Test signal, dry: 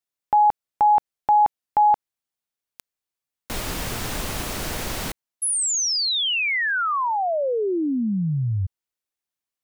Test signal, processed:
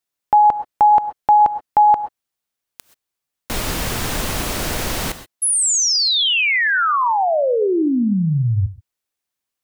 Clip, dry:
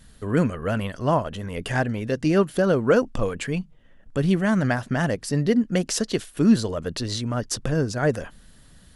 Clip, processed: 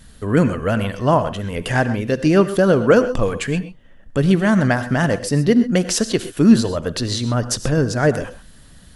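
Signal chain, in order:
reverb whose tail is shaped and stops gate 150 ms rising, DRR 12 dB
level +5.5 dB

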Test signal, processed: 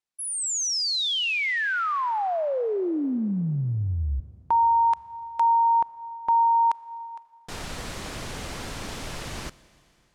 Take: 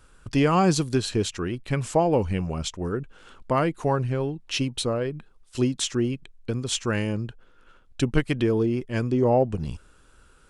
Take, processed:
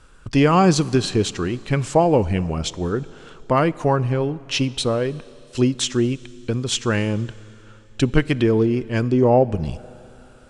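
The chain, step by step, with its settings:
low-pass filter 8,400 Hz 12 dB per octave
four-comb reverb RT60 3.1 s, combs from 28 ms, DRR 19 dB
level +5 dB

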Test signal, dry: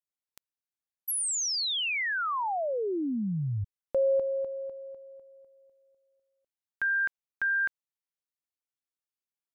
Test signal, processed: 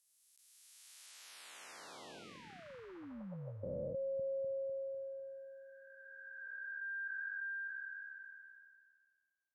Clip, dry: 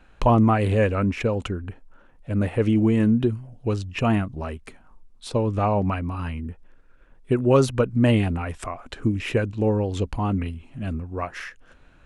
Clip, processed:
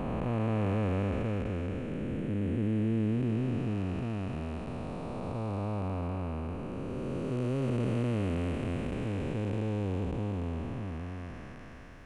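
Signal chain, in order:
spectrum smeared in time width 1,360 ms
level −4 dB

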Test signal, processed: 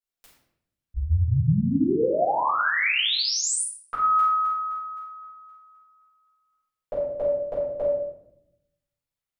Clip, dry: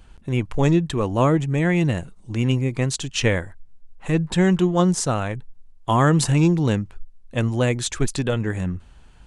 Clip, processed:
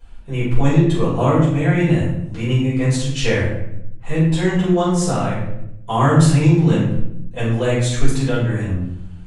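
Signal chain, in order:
rectangular room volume 210 cubic metres, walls mixed, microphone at 4.9 metres
level −11.5 dB

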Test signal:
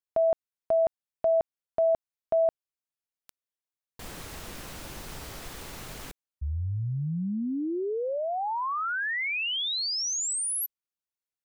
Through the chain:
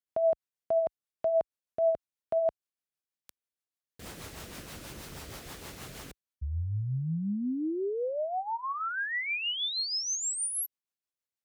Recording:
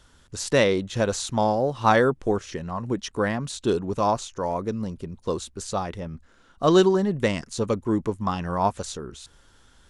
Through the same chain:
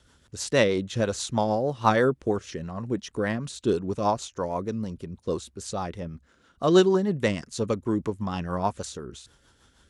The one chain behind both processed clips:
high-pass filter 50 Hz
rotating-speaker cabinet horn 6.3 Hz

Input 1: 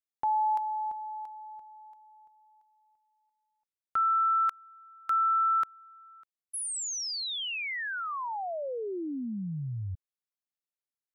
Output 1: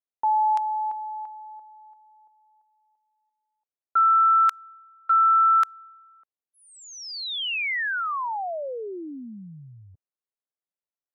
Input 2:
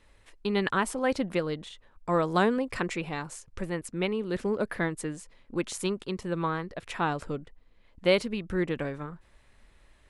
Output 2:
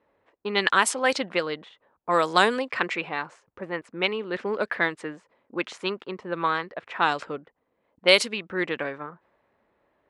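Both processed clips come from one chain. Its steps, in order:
meter weighting curve A
low-pass that shuts in the quiet parts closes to 650 Hz, open at −23 dBFS
high-shelf EQ 3,400 Hz +11.5 dB
level +5.5 dB

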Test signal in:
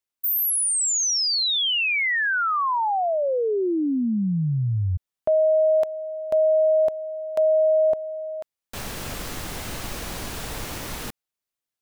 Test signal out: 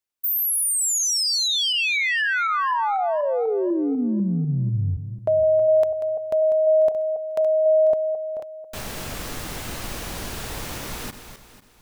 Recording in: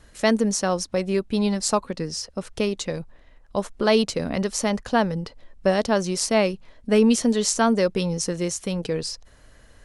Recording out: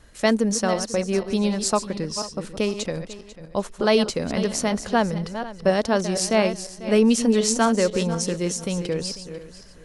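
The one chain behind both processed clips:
feedback delay that plays each chunk backwards 247 ms, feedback 45%, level −10 dB

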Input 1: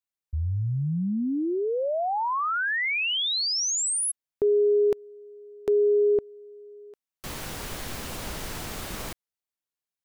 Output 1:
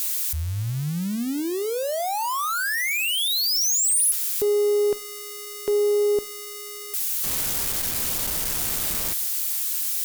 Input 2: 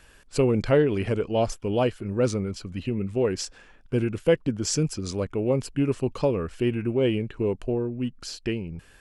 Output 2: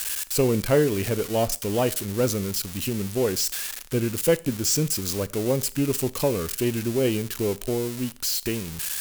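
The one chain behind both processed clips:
spike at every zero crossing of −19.5 dBFS
harmonic generator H 6 −34 dB, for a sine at −9 dBFS
four-comb reverb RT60 0.41 s, combs from 27 ms, DRR 18.5 dB

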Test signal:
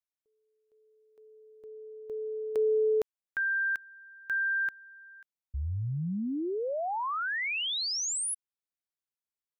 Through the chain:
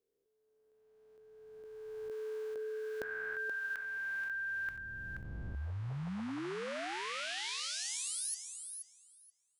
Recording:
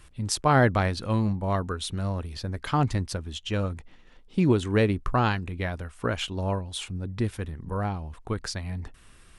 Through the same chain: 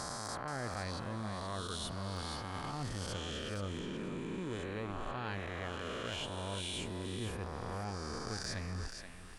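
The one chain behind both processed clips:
peak hold with a rise ahead of every peak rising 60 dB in 2.44 s
reversed playback
downward compressor 16 to 1, threshold −32 dBFS
reversed playback
hard clipping −21.5 dBFS
feedback echo with a high-pass in the loop 478 ms, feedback 16%, high-pass 310 Hz, level −7 dB
level −4.5 dB

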